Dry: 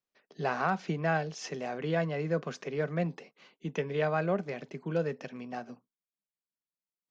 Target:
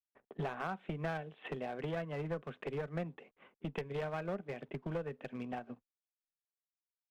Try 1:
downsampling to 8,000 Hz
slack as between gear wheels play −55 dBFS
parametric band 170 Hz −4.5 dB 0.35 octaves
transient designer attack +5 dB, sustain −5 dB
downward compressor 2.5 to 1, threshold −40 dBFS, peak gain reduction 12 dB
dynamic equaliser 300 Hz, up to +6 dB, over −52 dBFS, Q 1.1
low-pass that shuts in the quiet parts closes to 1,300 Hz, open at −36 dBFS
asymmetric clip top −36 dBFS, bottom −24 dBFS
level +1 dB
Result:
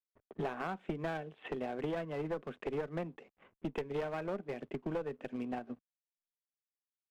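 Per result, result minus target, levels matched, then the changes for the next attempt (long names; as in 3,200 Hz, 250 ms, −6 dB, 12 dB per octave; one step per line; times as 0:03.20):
slack as between gear wheels: distortion +8 dB; 125 Hz band −4.0 dB
change: slack as between gear wheels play −63.5 dBFS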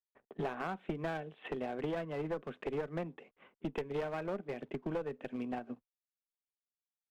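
125 Hz band −4.0 dB
change: dynamic equaliser 120 Hz, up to +6 dB, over −52 dBFS, Q 1.1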